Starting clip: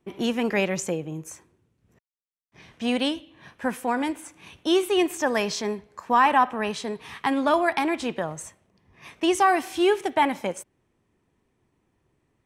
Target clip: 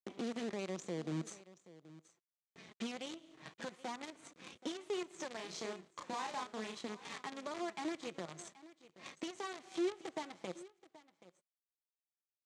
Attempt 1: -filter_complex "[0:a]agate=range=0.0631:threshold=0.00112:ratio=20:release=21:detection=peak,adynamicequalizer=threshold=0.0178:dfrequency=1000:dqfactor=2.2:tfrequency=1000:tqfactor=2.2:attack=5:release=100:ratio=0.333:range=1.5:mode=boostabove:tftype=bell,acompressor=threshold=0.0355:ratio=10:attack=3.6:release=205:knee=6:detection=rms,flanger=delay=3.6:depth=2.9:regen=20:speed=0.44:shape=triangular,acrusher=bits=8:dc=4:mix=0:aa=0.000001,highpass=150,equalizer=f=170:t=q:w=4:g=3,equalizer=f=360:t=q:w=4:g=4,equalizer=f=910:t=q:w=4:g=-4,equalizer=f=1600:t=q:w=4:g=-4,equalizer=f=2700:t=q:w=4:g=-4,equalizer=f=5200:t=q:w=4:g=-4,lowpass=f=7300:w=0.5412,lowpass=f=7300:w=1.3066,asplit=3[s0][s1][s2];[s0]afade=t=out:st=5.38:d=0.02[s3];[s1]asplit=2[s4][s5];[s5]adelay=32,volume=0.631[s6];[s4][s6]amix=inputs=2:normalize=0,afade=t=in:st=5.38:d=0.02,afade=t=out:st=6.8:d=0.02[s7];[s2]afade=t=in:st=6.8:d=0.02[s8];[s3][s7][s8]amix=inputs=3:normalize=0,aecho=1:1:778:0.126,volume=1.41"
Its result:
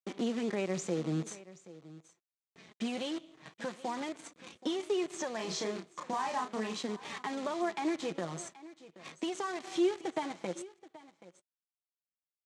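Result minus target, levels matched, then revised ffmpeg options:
compression: peak gain reduction -7.5 dB
-filter_complex "[0:a]agate=range=0.0631:threshold=0.00112:ratio=20:release=21:detection=peak,adynamicequalizer=threshold=0.0178:dfrequency=1000:dqfactor=2.2:tfrequency=1000:tqfactor=2.2:attack=5:release=100:ratio=0.333:range=1.5:mode=boostabove:tftype=bell,acompressor=threshold=0.0133:ratio=10:attack=3.6:release=205:knee=6:detection=rms,flanger=delay=3.6:depth=2.9:regen=20:speed=0.44:shape=triangular,acrusher=bits=8:dc=4:mix=0:aa=0.000001,highpass=150,equalizer=f=170:t=q:w=4:g=3,equalizer=f=360:t=q:w=4:g=4,equalizer=f=910:t=q:w=4:g=-4,equalizer=f=1600:t=q:w=4:g=-4,equalizer=f=2700:t=q:w=4:g=-4,equalizer=f=5200:t=q:w=4:g=-4,lowpass=f=7300:w=0.5412,lowpass=f=7300:w=1.3066,asplit=3[s0][s1][s2];[s0]afade=t=out:st=5.38:d=0.02[s3];[s1]asplit=2[s4][s5];[s5]adelay=32,volume=0.631[s6];[s4][s6]amix=inputs=2:normalize=0,afade=t=in:st=5.38:d=0.02,afade=t=out:st=6.8:d=0.02[s7];[s2]afade=t=in:st=6.8:d=0.02[s8];[s3][s7][s8]amix=inputs=3:normalize=0,aecho=1:1:778:0.126,volume=1.41"

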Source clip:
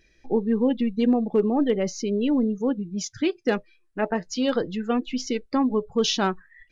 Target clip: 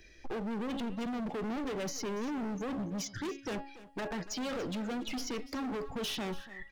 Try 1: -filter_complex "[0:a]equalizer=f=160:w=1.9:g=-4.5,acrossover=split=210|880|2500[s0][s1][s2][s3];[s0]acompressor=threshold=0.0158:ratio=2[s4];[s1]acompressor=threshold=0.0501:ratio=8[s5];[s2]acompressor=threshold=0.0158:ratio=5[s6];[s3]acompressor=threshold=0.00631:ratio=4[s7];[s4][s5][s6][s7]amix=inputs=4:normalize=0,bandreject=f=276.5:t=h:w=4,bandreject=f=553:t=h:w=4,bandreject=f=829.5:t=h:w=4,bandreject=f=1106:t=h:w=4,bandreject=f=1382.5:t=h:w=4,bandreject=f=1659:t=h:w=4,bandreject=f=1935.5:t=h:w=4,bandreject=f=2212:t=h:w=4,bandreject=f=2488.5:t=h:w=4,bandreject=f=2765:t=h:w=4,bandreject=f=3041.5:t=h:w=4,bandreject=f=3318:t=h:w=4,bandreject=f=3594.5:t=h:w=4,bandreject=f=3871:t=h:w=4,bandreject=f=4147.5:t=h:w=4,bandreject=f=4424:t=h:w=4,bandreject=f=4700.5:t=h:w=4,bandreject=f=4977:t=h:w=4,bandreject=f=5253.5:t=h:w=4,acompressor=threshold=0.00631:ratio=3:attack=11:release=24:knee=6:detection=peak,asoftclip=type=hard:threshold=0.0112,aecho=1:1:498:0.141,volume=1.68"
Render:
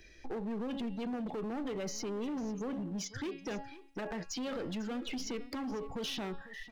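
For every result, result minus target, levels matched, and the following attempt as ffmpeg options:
echo 212 ms late; compression: peak gain reduction +7.5 dB
-filter_complex "[0:a]equalizer=f=160:w=1.9:g=-4.5,acrossover=split=210|880|2500[s0][s1][s2][s3];[s0]acompressor=threshold=0.0158:ratio=2[s4];[s1]acompressor=threshold=0.0501:ratio=8[s5];[s2]acompressor=threshold=0.0158:ratio=5[s6];[s3]acompressor=threshold=0.00631:ratio=4[s7];[s4][s5][s6][s7]amix=inputs=4:normalize=0,bandreject=f=276.5:t=h:w=4,bandreject=f=553:t=h:w=4,bandreject=f=829.5:t=h:w=4,bandreject=f=1106:t=h:w=4,bandreject=f=1382.5:t=h:w=4,bandreject=f=1659:t=h:w=4,bandreject=f=1935.5:t=h:w=4,bandreject=f=2212:t=h:w=4,bandreject=f=2488.5:t=h:w=4,bandreject=f=2765:t=h:w=4,bandreject=f=3041.5:t=h:w=4,bandreject=f=3318:t=h:w=4,bandreject=f=3594.5:t=h:w=4,bandreject=f=3871:t=h:w=4,bandreject=f=4147.5:t=h:w=4,bandreject=f=4424:t=h:w=4,bandreject=f=4700.5:t=h:w=4,bandreject=f=4977:t=h:w=4,bandreject=f=5253.5:t=h:w=4,acompressor=threshold=0.00631:ratio=3:attack=11:release=24:knee=6:detection=peak,asoftclip=type=hard:threshold=0.0112,aecho=1:1:286:0.141,volume=1.68"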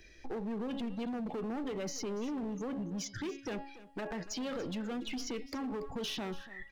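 compression: peak gain reduction +7.5 dB
-filter_complex "[0:a]equalizer=f=160:w=1.9:g=-4.5,acrossover=split=210|880|2500[s0][s1][s2][s3];[s0]acompressor=threshold=0.0158:ratio=2[s4];[s1]acompressor=threshold=0.0501:ratio=8[s5];[s2]acompressor=threshold=0.0158:ratio=5[s6];[s3]acompressor=threshold=0.00631:ratio=4[s7];[s4][s5][s6][s7]amix=inputs=4:normalize=0,bandreject=f=276.5:t=h:w=4,bandreject=f=553:t=h:w=4,bandreject=f=829.5:t=h:w=4,bandreject=f=1106:t=h:w=4,bandreject=f=1382.5:t=h:w=4,bandreject=f=1659:t=h:w=4,bandreject=f=1935.5:t=h:w=4,bandreject=f=2212:t=h:w=4,bandreject=f=2488.5:t=h:w=4,bandreject=f=2765:t=h:w=4,bandreject=f=3041.5:t=h:w=4,bandreject=f=3318:t=h:w=4,bandreject=f=3594.5:t=h:w=4,bandreject=f=3871:t=h:w=4,bandreject=f=4147.5:t=h:w=4,bandreject=f=4424:t=h:w=4,bandreject=f=4700.5:t=h:w=4,bandreject=f=4977:t=h:w=4,bandreject=f=5253.5:t=h:w=4,acompressor=threshold=0.0224:ratio=3:attack=11:release=24:knee=6:detection=peak,asoftclip=type=hard:threshold=0.0112,aecho=1:1:286:0.141,volume=1.68"

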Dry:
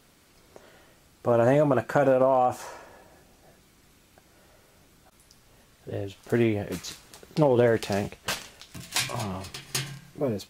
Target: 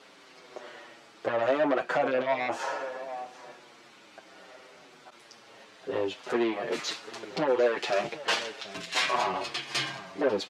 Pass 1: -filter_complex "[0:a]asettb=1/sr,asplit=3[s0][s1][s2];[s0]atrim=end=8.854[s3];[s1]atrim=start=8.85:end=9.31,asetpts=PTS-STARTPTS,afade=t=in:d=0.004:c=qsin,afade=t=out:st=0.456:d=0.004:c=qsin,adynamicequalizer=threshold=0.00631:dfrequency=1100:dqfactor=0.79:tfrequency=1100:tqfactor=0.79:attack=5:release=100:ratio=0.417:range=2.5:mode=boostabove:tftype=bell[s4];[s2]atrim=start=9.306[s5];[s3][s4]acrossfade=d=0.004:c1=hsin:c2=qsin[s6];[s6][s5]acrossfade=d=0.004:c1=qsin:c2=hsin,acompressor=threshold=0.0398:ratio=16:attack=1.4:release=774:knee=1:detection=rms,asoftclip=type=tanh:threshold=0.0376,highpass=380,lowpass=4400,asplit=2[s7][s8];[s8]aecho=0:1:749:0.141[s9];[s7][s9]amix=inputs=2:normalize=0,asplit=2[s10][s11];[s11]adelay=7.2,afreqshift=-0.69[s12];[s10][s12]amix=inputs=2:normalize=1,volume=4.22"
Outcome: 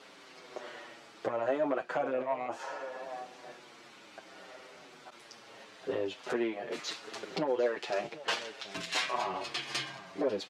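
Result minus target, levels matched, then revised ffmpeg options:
compression: peak gain reduction +9 dB
-filter_complex "[0:a]asettb=1/sr,asplit=3[s0][s1][s2];[s0]atrim=end=8.854[s3];[s1]atrim=start=8.85:end=9.31,asetpts=PTS-STARTPTS,afade=t=in:d=0.004:c=qsin,afade=t=out:st=0.456:d=0.004:c=qsin,adynamicequalizer=threshold=0.00631:dfrequency=1100:dqfactor=0.79:tfrequency=1100:tqfactor=0.79:attack=5:release=100:ratio=0.417:range=2.5:mode=boostabove:tftype=bell[s4];[s2]atrim=start=9.306[s5];[s3][s4]acrossfade=d=0.004:c1=hsin:c2=qsin[s6];[s6][s5]acrossfade=d=0.004:c1=qsin:c2=hsin,acompressor=threshold=0.119:ratio=16:attack=1.4:release=774:knee=1:detection=rms,asoftclip=type=tanh:threshold=0.0376,highpass=380,lowpass=4400,asplit=2[s7][s8];[s8]aecho=0:1:749:0.141[s9];[s7][s9]amix=inputs=2:normalize=0,asplit=2[s10][s11];[s11]adelay=7.2,afreqshift=-0.69[s12];[s10][s12]amix=inputs=2:normalize=1,volume=4.22"

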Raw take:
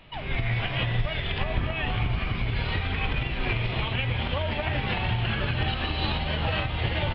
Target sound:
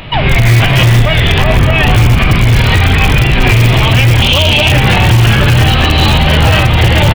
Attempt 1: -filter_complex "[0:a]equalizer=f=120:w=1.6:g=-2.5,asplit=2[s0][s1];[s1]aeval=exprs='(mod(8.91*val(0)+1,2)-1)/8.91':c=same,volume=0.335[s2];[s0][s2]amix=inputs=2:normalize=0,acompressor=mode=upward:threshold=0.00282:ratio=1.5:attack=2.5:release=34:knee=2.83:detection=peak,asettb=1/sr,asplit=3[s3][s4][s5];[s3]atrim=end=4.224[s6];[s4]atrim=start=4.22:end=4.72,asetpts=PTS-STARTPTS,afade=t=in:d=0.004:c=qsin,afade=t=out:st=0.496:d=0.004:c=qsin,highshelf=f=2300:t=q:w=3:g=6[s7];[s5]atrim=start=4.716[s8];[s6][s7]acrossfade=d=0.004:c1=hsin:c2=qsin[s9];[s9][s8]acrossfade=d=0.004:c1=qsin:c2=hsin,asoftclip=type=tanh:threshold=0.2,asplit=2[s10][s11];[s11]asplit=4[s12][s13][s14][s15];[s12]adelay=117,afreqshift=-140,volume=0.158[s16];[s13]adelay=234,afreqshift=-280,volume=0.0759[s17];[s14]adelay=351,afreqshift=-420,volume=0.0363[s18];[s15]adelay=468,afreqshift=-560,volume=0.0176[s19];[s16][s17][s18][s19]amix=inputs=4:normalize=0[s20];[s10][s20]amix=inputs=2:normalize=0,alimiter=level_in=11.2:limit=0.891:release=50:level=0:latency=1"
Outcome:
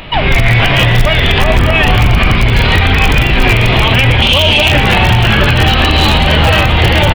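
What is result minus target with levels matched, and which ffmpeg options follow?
125 Hz band -3.0 dB
-filter_complex "[0:a]equalizer=f=120:w=1.6:g=5,asplit=2[s0][s1];[s1]aeval=exprs='(mod(8.91*val(0)+1,2)-1)/8.91':c=same,volume=0.335[s2];[s0][s2]amix=inputs=2:normalize=0,acompressor=mode=upward:threshold=0.00282:ratio=1.5:attack=2.5:release=34:knee=2.83:detection=peak,asettb=1/sr,asplit=3[s3][s4][s5];[s3]atrim=end=4.224[s6];[s4]atrim=start=4.22:end=4.72,asetpts=PTS-STARTPTS,afade=t=in:d=0.004:c=qsin,afade=t=out:st=0.496:d=0.004:c=qsin,highshelf=f=2300:t=q:w=3:g=6[s7];[s5]atrim=start=4.716[s8];[s6][s7]acrossfade=d=0.004:c1=hsin:c2=qsin[s9];[s9][s8]acrossfade=d=0.004:c1=qsin:c2=hsin,asoftclip=type=tanh:threshold=0.2,asplit=2[s10][s11];[s11]asplit=4[s12][s13][s14][s15];[s12]adelay=117,afreqshift=-140,volume=0.158[s16];[s13]adelay=234,afreqshift=-280,volume=0.0759[s17];[s14]adelay=351,afreqshift=-420,volume=0.0363[s18];[s15]adelay=468,afreqshift=-560,volume=0.0176[s19];[s16][s17][s18][s19]amix=inputs=4:normalize=0[s20];[s10][s20]amix=inputs=2:normalize=0,alimiter=level_in=11.2:limit=0.891:release=50:level=0:latency=1"

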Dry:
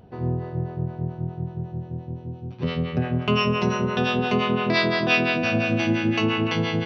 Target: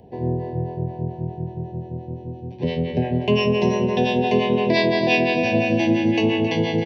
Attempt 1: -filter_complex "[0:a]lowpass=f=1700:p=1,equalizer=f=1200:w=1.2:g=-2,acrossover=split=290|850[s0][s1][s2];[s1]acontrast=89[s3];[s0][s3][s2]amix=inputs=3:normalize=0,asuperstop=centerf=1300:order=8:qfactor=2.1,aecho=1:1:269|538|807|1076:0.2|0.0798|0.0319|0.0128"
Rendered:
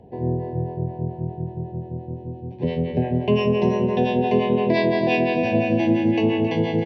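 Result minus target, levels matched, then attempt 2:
2 kHz band -3.5 dB
-filter_complex "[0:a]equalizer=f=1200:w=1.2:g=-2,acrossover=split=290|850[s0][s1][s2];[s1]acontrast=89[s3];[s0][s3][s2]amix=inputs=3:normalize=0,asuperstop=centerf=1300:order=8:qfactor=2.1,aecho=1:1:269|538|807|1076:0.2|0.0798|0.0319|0.0128"

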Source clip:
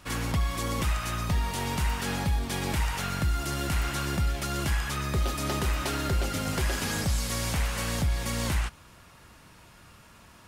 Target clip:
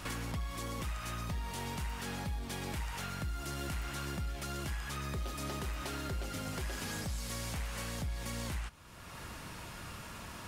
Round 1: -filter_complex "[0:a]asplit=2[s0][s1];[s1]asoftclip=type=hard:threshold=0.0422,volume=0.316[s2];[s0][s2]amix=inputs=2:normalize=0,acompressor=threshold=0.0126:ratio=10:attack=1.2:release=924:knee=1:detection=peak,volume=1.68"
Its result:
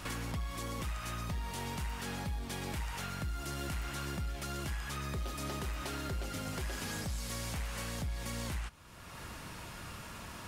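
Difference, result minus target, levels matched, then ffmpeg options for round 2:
hard clipper: distortion -5 dB
-filter_complex "[0:a]asplit=2[s0][s1];[s1]asoftclip=type=hard:threshold=0.0188,volume=0.316[s2];[s0][s2]amix=inputs=2:normalize=0,acompressor=threshold=0.0126:ratio=10:attack=1.2:release=924:knee=1:detection=peak,volume=1.68"

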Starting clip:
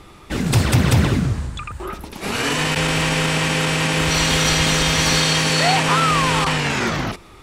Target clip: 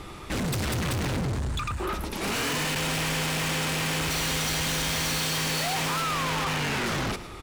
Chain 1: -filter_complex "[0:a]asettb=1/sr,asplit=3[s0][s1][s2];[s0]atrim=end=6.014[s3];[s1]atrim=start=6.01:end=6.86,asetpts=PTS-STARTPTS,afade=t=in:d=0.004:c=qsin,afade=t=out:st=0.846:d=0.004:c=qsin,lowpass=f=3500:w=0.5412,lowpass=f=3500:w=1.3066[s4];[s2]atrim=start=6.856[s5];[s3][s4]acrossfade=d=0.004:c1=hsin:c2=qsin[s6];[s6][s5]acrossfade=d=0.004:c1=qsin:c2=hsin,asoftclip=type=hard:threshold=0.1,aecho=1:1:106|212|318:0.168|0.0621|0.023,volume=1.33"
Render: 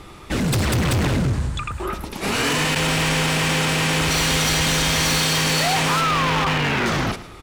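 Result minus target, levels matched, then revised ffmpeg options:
hard clipper: distortion -4 dB
-filter_complex "[0:a]asettb=1/sr,asplit=3[s0][s1][s2];[s0]atrim=end=6.014[s3];[s1]atrim=start=6.01:end=6.86,asetpts=PTS-STARTPTS,afade=t=in:d=0.004:c=qsin,afade=t=out:st=0.846:d=0.004:c=qsin,lowpass=f=3500:w=0.5412,lowpass=f=3500:w=1.3066[s4];[s2]atrim=start=6.856[s5];[s3][s4]acrossfade=d=0.004:c1=hsin:c2=qsin[s6];[s6][s5]acrossfade=d=0.004:c1=qsin:c2=hsin,asoftclip=type=hard:threshold=0.0335,aecho=1:1:106|212|318:0.168|0.0621|0.023,volume=1.33"

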